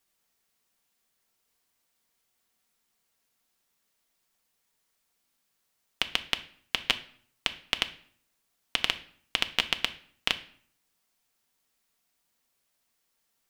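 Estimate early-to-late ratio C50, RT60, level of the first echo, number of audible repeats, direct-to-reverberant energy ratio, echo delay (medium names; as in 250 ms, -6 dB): 15.5 dB, 0.55 s, no echo, no echo, 7.5 dB, no echo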